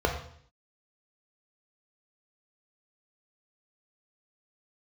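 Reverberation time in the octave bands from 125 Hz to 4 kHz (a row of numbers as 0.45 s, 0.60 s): 0.70 s, 0.70 s, 0.60 s, 0.55 s, 0.60 s, 0.60 s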